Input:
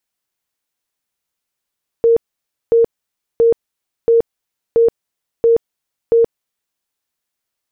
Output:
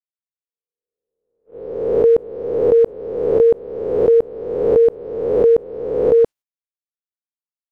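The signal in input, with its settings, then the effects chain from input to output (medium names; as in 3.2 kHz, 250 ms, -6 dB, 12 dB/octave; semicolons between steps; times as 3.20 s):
tone bursts 462 Hz, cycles 58, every 0.68 s, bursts 7, -7.5 dBFS
reverse spectral sustain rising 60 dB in 1.29 s; spectral noise reduction 12 dB; gate -35 dBFS, range -28 dB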